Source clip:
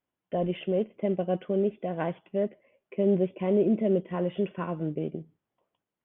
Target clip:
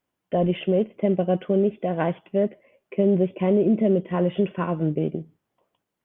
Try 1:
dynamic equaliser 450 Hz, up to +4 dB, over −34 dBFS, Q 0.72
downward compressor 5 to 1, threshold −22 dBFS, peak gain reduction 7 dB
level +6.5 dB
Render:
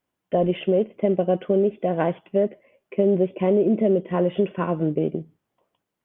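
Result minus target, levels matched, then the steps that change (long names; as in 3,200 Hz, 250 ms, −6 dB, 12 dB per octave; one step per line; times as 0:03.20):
125 Hz band −2.5 dB
change: dynamic equaliser 110 Hz, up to +4 dB, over −34 dBFS, Q 0.72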